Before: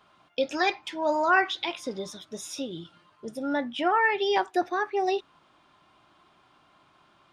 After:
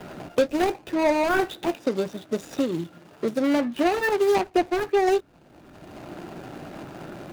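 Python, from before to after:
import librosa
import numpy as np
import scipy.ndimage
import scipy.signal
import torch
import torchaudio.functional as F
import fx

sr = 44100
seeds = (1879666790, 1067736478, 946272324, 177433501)

y = scipy.signal.medfilt(x, 41)
y = fx.highpass(y, sr, hz=210.0, slope=6, at=(1.74, 4.43))
y = fx.band_squash(y, sr, depth_pct=70)
y = y * librosa.db_to_amplitude(9.0)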